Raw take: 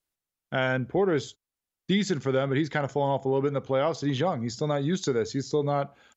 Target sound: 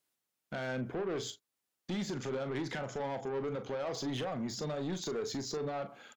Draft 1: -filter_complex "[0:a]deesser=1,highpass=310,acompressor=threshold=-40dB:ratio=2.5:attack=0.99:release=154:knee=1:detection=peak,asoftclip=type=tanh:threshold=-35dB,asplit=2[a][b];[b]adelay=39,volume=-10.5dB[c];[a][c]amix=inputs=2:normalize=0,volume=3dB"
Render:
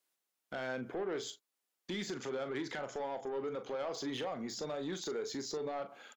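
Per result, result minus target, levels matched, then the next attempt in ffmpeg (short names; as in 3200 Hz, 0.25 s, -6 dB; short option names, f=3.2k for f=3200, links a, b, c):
125 Hz band -7.5 dB; compressor: peak gain reduction +3 dB
-filter_complex "[0:a]deesser=1,highpass=150,acompressor=threshold=-40dB:ratio=2.5:attack=0.99:release=154:knee=1:detection=peak,asoftclip=type=tanh:threshold=-35dB,asplit=2[a][b];[b]adelay=39,volume=-10.5dB[c];[a][c]amix=inputs=2:normalize=0,volume=3dB"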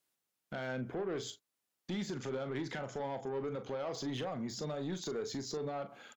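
compressor: peak gain reduction +3.5 dB
-filter_complex "[0:a]deesser=1,highpass=150,acompressor=threshold=-34dB:ratio=2.5:attack=0.99:release=154:knee=1:detection=peak,asoftclip=type=tanh:threshold=-35dB,asplit=2[a][b];[b]adelay=39,volume=-10.5dB[c];[a][c]amix=inputs=2:normalize=0,volume=3dB"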